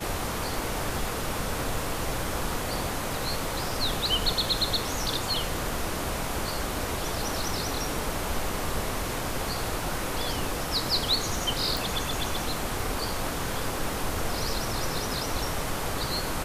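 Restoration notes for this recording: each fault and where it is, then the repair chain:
0:11.77: click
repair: click removal

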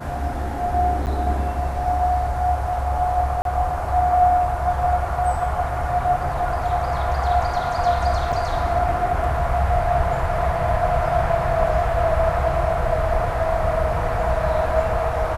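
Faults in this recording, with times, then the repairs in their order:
0:01.06–0:01.07: drop-out 9.1 ms
0:03.42–0:03.45: drop-out 32 ms
0:08.32–0:08.33: drop-out 5.8 ms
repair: repair the gap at 0:01.06, 9.1 ms
repair the gap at 0:03.42, 32 ms
repair the gap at 0:08.32, 5.8 ms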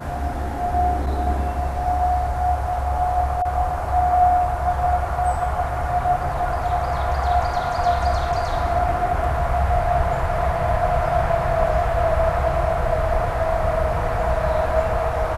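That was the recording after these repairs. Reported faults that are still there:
none of them is left

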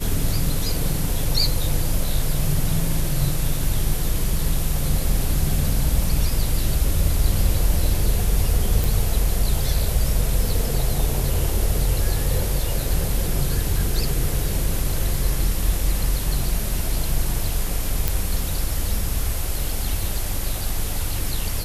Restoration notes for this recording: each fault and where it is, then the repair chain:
0:08.84: click
0:18.08: click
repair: click removal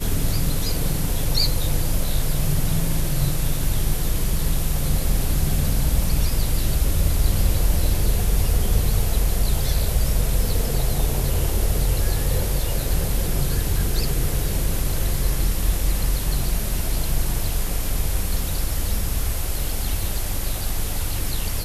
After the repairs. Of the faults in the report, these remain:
none of them is left

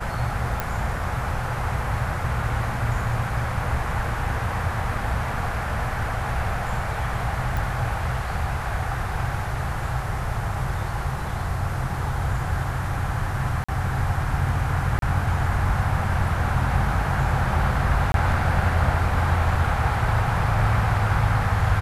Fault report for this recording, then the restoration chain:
0:00.60: click
0:07.57: click
0:13.64–0:13.69: drop-out 45 ms
0:14.99–0:15.02: drop-out 32 ms
0:18.12–0:18.14: drop-out 22 ms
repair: click removal
repair the gap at 0:13.64, 45 ms
repair the gap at 0:14.99, 32 ms
repair the gap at 0:18.12, 22 ms

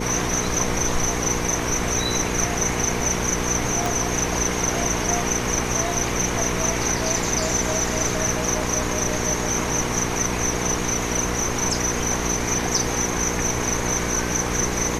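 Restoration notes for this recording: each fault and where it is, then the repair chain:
mains hum 60 Hz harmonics 8 −28 dBFS
0:03.86: click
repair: click removal
hum removal 60 Hz, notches 8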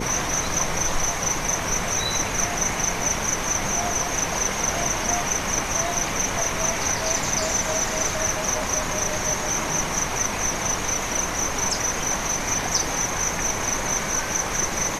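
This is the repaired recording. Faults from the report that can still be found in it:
0:03.86: click

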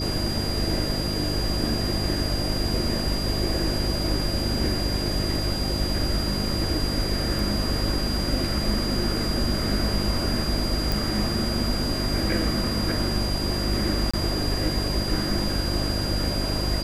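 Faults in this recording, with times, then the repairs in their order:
mains hum 50 Hz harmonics 7 −29 dBFS
whistle 4,800 Hz −30 dBFS
0:10.92: click
0:14.11–0:14.13: drop-out 25 ms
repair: click removal
notch filter 4,800 Hz, Q 30
hum removal 50 Hz, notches 7
repair the gap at 0:14.11, 25 ms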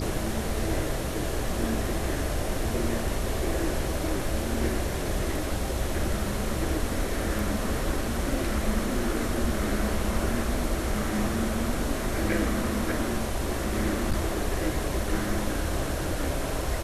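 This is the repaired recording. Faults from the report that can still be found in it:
none of them is left

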